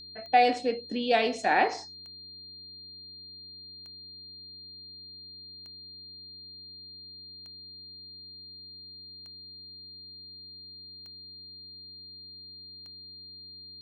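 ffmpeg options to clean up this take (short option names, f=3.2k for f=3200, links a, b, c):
-af "adeclick=t=4,bandreject=f=91.7:t=h:w=4,bandreject=f=183.4:t=h:w=4,bandreject=f=275.1:t=h:w=4,bandreject=f=366.8:t=h:w=4,bandreject=f=4.2k:w=30"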